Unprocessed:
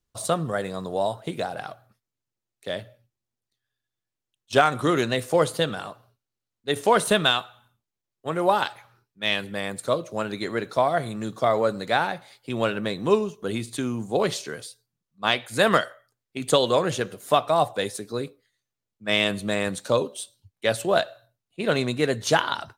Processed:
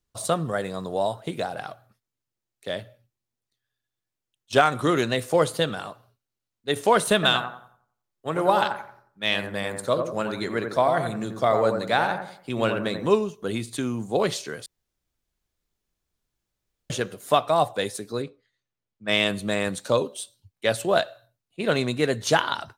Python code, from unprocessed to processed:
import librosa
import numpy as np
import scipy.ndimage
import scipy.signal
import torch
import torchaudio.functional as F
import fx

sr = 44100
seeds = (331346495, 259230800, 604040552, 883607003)

y = fx.echo_bbd(x, sr, ms=89, stages=1024, feedback_pct=34, wet_db=-6, at=(7.14, 13.08))
y = fx.air_absorb(y, sr, metres=99.0, at=(18.22, 19.08))
y = fx.edit(y, sr, fx.room_tone_fill(start_s=14.66, length_s=2.24), tone=tone)